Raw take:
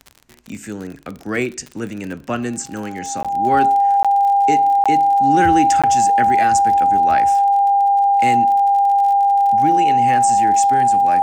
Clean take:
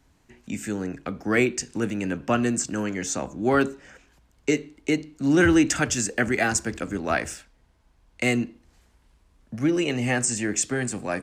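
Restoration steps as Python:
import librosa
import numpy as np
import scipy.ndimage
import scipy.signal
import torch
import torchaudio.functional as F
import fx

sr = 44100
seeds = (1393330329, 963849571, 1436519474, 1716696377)

y = fx.fix_declick_ar(x, sr, threshold=6.5)
y = fx.notch(y, sr, hz=800.0, q=30.0)
y = fx.fix_interpolate(y, sr, at_s=(3.23, 4.03, 4.84, 5.82), length_ms=16.0)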